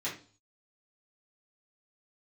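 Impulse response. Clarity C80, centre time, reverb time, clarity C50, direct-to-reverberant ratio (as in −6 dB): 14.0 dB, 25 ms, 0.40 s, 8.0 dB, −9.0 dB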